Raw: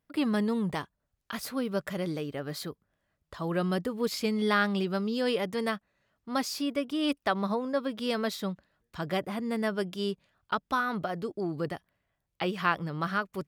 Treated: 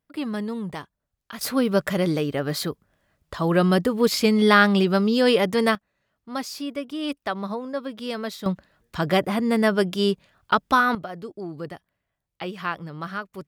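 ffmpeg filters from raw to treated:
-af "asetnsamples=n=441:p=0,asendcmd='1.41 volume volume 10dB;5.75 volume volume 0dB;8.46 volume volume 10dB;10.95 volume volume -1.5dB',volume=-1dB"

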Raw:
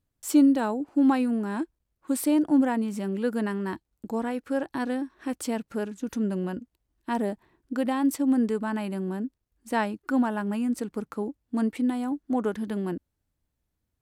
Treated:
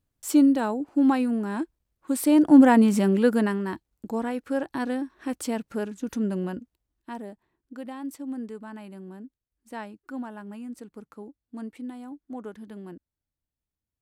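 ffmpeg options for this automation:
-af "volume=10.5dB,afade=t=in:st=2.19:d=0.66:silence=0.316228,afade=t=out:st=2.85:d=0.81:silence=0.316228,afade=t=out:st=6.42:d=0.8:silence=0.266073"

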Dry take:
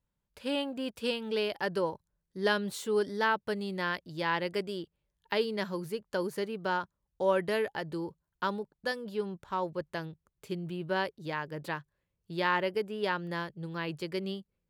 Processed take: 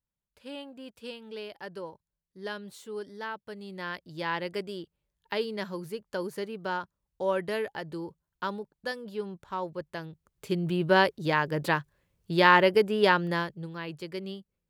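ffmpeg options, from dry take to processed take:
-af "volume=9.5dB,afade=t=in:st=3.51:d=0.69:silence=0.398107,afade=t=in:st=10.07:d=0.71:silence=0.298538,afade=t=out:st=13.08:d=0.66:silence=0.266073"

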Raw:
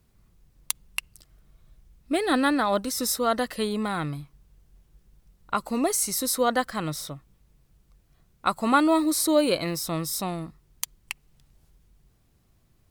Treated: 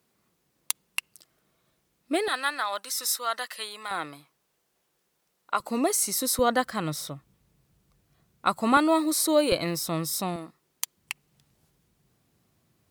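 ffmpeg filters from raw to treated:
-af "asetnsamples=n=441:p=0,asendcmd='2.28 highpass f 1100;3.91 highpass f 460;5.6 highpass f 190;6.39 highpass f 92;8.77 highpass f 300;9.52 highpass f 96;10.36 highpass f 300;10.97 highpass f 130',highpass=270"

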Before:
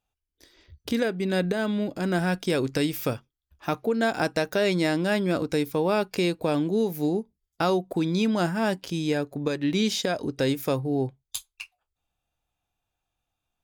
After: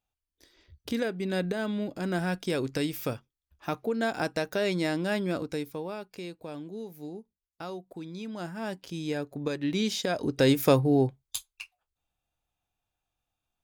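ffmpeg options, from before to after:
-af "volume=15.5dB,afade=t=out:st=5.24:d=0.74:silence=0.298538,afade=t=in:st=8.24:d=1.25:silence=0.281838,afade=t=in:st=10.02:d=0.69:silence=0.354813,afade=t=out:st=10.71:d=0.76:silence=0.398107"

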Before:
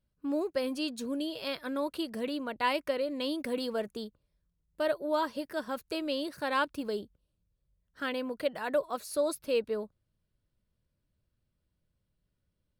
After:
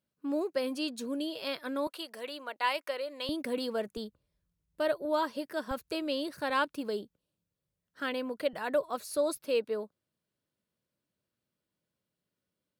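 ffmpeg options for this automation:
-af "asetnsamples=n=441:p=0,asendcmd='1.87 highpass f 620;3.29 highpass f 150;3.97 highpass f 57;5.05 highpass f 160;5.71 highpass f 56;6.5 highpass f 160;8.53 highpass f 62;9.37 highpass f 220',highpass=190"

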